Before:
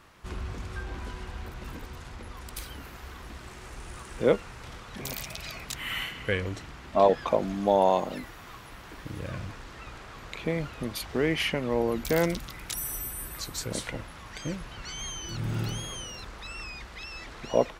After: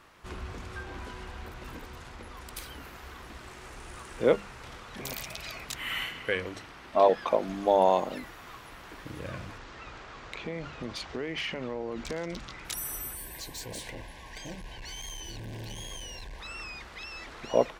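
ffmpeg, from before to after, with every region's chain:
-filter_complex "[0:a]asettb=1/sr,asplit=3[s0][s1][s2];[s0]atrim=end=6.194[s3];[s1]atrim=start=6.19:end=7.49,asetpts=PTS-STARTPTS,afade=t=in:d=0.004:c=qsin,afade=t=out:st=1.296:d=0.004:c=qsin,equalizer=f=66:t=o:w=2.8:g=-7,bandreject=f=7100:w=9.5[s4];[s2]atrim=start=7.486[s5];[s3][s4]acrossfade=d=0.004:c1=hsin:c2=qsin[s6];[s6][s5]acrossfade=d=0.004:c1=qsin:c2=hsin,asettb=1/sr,asplit=3[s7][s8][s9];[s7]atrim=end=9.584[s10];[s8]atrim=start=9.58:end=12.65,asetpts=PTS-STARTPTS,afade=t=in:d=0.004:c=qsin,afade=t=out:st=3.066:d=0.004:c=qsin,lowpass=f=7200:w=0.5412,lowpass=f=7200:w=1.3066,acompressor=threshold=0.0398:ratio=12:attack=3.2:release=140:knee=1:detection=peak,asoftclip=type=hard:threshold=0.0596[s11];[s9]atrim=start=12.646[s12];[s10][s11]acrossfade=d=0.004:c1=hsin:c2=qsin[s13];[s13][s12]acrossfade=d=0.004:c1=qsin:c2=hsin,asettb=1/sr,asplit=3[s14][s15][s16];[s14]atrim=end=13.154[s17];[s15]atrim=start=13.15:end=16.4,asetpts=PTS-STARTPTS,afade=t=in:d=0.004:c=qsin,afade=t=out:st=3.246:d=0.004:c=qsin,asubboost=boost=4.5:cutoff=78,asoftclip=type=hard:threshold=0.0188,asuperstop=centerf=1300:order=8:qfactor=3.2[s18];[s16]atrim=start=16.396[s19];[s17][s18]acrossfade=d=0.004:c1=hsin:c2=qsin[s20];[s20][s19]acrossfade=d=0.004:c1=qsin:c2=hsin,bass=f=250:g=-4,treble=f=4000:g=-2,bandreject=f=50:t=h:w=6,bandreject=f=100:t=h:w=6,bandreject=f=150:t=h:w=6,bandreject=f=200:t=h:w=6"

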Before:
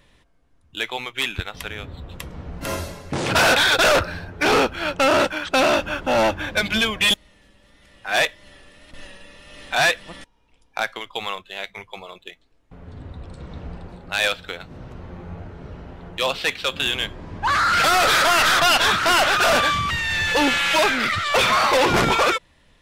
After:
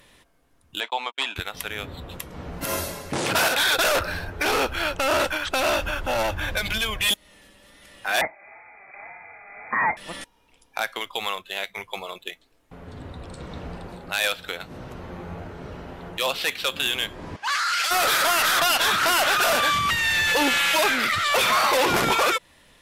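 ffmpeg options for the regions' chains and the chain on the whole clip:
-filter_complex "[0:a]asettb=1/sr,asplit=3[s0][s1][s2];[s0]atrim=end=0.804[s3];[s1]atrim=start=0.8:end=1.36,asetpts=PTS-STARTPTS,afade=t=in:d=0.004:c=qsin,afade=t=out:st=0.556:d=0.004:c=qsin,agate=range=0.00631:threshold=0.0178:ratio=16:release=100:detection=peak,highpass=f=250:w=0.5412,highpass=f=250:w=1.3066,equalizer=f=360:t=q:w=4:g=-8,equalizer=f=670:t=q:w=4:g=7,equalizer=f=950:t=q:w=4:g=9,equalizer=f=2100:t=q:w=4:g=-6,equalizer=f=6000:t=q:w=4:g=-10,lowpass=f=7100:w=0.5412,lowpass=f=7100:w=1.3066[s4];[s2]atrim=start=1.356[s5];[s3][s4]acrossfade=d=0.004:c1=hsin:c2=qsin[s6];[s6][s5]acrossfade=d=0.004:c1=qsin:c2=hsin,asettb=1/sr,asplit=3[s7][s8][s9];[s7]atrim=end=3.484[s10];[s8]atrim=start=3.48:end=7.09,asetpts=PTS-STARTPTS,afade=t=in:d=0.004:c=qsin,afade=t=out:st=3.606:d=0.004:c=qsin,asubboost=boost=11.5:cutoff=76,acompressor=threshold=0.0891:ratio=4:attack=3.2:release=140:knee=1:detection=peak[s11];[s9]atrim=start=7.086[s12];[s10][s11]acrossfade=d=0.004:c1=hsin:c2=qsin[s13];[s13][s12]acrossfade=d=0.004:c1=qsin:c2=hsin,asettb=1/sr,asplit=3[s14][s15][s16];[s14]atrim=end=8.214[s17];[s15]atrim=start=8.21:end=9.97,asetpts=PTS-STARTPTS,afade=t=in:d=0.004:c=qsin,afade=t=out:st=1.756:d=0.004:c=qsin,highpass=150,lowpass=f=2200:t=q:w=0.5098,lowpass=f=2200:t=q:w=0.6013,lowpass=f=2200:t=q:w=0.9,lowpass=f=2200:t=q:w=2.563,afreqshift=-2600[s18];[s16]atrim=start=9.966[s19];[s17][s18]acrossfade=d=0.004:c1=hsin:c2=qsin[s20];[s20][s19]acrossfade=d=0.004:c1=qsin:c2=hsin,asettb=1/sr,asplit=3[s21][s22][s23];[s21]atrim=end=17.364[s24];[s22]atrim=start=17.36:end=17.91,asetpts=PTS-STARTPTS,afade=t=in:d=0.004:c=qsin,afade=t=out:st=0.546:d=0.004:c=qsin,bandpass=f=4200:t=q:w=0.89,equalizer=f=3800:w=4:g=-6[s25];[s23]atrim=start=17.906[s26];[s24][s25]acrossfade=d=0.004:c1=hsin:c2=qsin[s27];[s27][s26]acrossfade=d=0.004:c1=qsin:c2=hsin,equalizer=f=13000:w=0.81:g=11,alimiter=limit=0.126:level=0:latency=1:release=220,lowshelf=f=160:g=-9,volume=1.58"

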